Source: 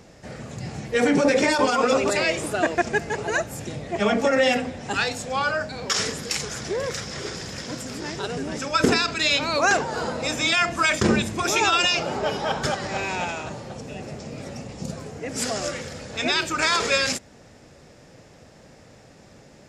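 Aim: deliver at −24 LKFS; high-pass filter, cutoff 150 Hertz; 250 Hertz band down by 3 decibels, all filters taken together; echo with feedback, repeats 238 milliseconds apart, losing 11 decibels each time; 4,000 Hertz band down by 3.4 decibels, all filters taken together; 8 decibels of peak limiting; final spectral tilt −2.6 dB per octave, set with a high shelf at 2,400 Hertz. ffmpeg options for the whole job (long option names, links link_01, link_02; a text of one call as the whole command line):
ffmpeg -i in.wav -af "highpass=150,equalizer=frequency=250:width_type=o:gain=-3,highshelf=frequency=2400:gain=3,equalizer=frequency=4000:width_type=o:gain=-7.5,alimiter=limit=-14.5dB:level=0:latency=1,aecho=1:1:238|476|714:0.282|0.0789|0.0221,volume=1.5dB" out.wav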